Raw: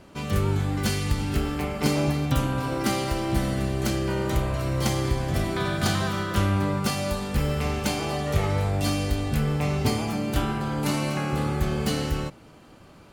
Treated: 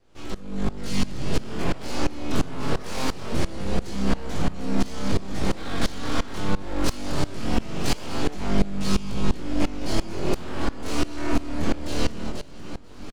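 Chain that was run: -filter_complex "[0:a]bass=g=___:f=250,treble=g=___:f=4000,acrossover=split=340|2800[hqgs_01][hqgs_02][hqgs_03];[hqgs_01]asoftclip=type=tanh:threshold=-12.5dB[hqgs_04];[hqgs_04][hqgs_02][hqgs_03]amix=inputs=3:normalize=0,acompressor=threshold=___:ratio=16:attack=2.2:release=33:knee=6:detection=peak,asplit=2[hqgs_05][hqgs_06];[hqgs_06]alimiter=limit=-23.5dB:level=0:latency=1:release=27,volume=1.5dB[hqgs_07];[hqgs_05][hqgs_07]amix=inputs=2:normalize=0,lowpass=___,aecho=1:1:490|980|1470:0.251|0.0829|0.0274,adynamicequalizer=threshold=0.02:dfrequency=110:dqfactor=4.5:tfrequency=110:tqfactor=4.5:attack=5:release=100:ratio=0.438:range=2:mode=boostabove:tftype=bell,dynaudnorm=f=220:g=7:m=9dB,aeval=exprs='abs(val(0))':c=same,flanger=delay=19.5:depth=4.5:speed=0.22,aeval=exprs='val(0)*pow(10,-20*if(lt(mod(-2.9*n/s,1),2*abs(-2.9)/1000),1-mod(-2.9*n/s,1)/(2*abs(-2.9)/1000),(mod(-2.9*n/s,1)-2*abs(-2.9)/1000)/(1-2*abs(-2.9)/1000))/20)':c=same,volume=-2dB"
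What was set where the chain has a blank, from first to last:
9, 8, -20dB, 6200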